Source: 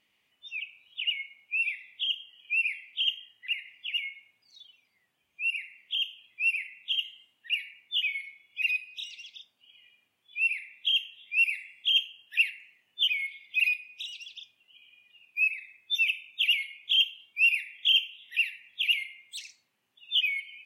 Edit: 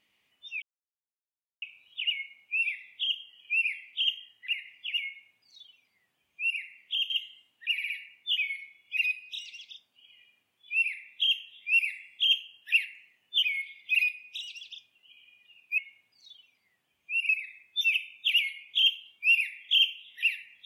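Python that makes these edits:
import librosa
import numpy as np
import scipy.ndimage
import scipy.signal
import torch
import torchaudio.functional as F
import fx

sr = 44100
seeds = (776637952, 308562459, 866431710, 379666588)

y = fx.edit(x, sr, fx.insert_silence(at_s=0.62, length_s=1.0),
    fx.duplicate(start_s=4.08, length_s=1.51, to_s=15.43),
    fx.cut(start_s=6.1, length_s=0.83),
    fx.stutter(start_s=7.55, slice_s=0.06, count=4), tone=tone)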